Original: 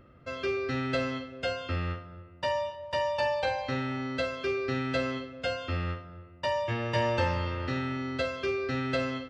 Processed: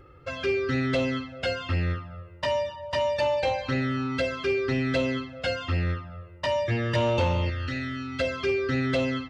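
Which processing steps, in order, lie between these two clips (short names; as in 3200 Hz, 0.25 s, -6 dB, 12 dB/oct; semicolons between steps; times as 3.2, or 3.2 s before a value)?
envelope flanger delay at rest 2.5 ms, full sweep at -25 dBFS; soft clip -24.5 dBFS, distortion -18 dB; 7.5–8.2 fifteen-band EQ 160 Hz -12 dB, 400 Hz -11 dB, 1000 Hz -11 dB; gain +7.5 dB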